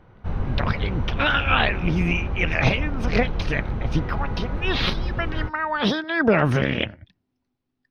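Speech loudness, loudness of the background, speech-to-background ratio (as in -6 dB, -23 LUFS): -24.0 LUFS, -29.5 LUFS, 5.5 dB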